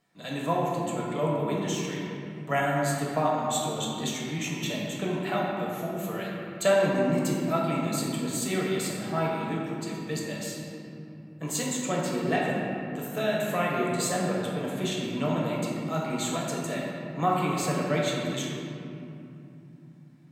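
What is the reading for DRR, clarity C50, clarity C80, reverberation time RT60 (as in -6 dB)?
-4.5 dB, -1.0 dB, 0.5 dB, 2.8 s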